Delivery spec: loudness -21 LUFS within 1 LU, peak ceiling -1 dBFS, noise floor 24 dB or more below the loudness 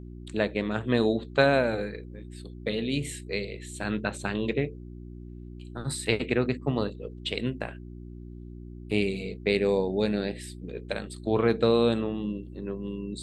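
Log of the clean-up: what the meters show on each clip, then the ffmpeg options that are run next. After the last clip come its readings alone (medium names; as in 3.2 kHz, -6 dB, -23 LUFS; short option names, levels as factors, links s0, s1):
hum 60 Hz; highest harmonic 360 Hz; hum level -39 dBFS; loudness -28.5 LUFS; peak level -7.5 dBFS; loudness target -21.0 LUFS
-> -af "bandreject=f=60:t=h:w=4,bandreject=f=120:t=h:w=4,bandreject=f=180:t=h:w=4,bandreject=f=240:t=h:w=4,bandreject=f=300:t=h:w=4,bandreject=f=360:t=h:w=4"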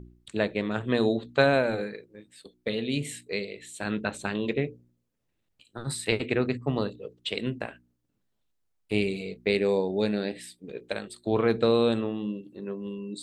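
hum not found; loudness -28.5 LUFS; peak level -7.5 dBFS; loudness target -21.0 LUFS
-> -af "volume=2.37,alimiter=limit=0.891:level=0:latency=1"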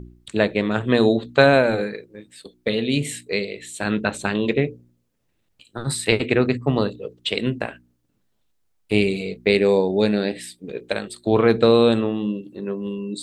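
loudness -21.0 LUFS; peak level -1.0 dBFS; noise floor -69 dBFS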